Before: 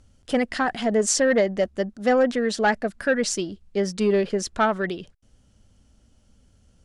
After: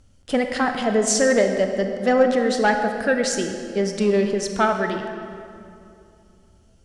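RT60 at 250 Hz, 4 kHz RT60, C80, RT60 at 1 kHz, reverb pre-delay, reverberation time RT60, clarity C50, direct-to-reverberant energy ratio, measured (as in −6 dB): 3.0 s, 1.6 s, 6.5 dB, 2.4 s, 25 ms, 2.7 s, 5.5 dB, 5.0 dB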